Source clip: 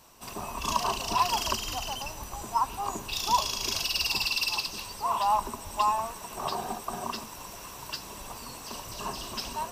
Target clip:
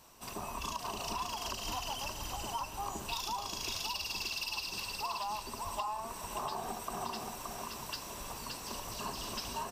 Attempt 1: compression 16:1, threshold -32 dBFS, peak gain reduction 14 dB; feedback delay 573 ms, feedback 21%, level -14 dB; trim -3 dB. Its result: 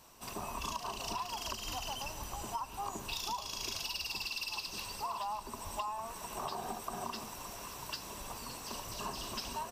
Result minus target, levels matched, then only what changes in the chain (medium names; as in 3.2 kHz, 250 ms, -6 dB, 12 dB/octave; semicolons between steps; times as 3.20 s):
echo-to-direct -10 dB
change: feedback delay 573 ms, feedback 21%, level -4 dB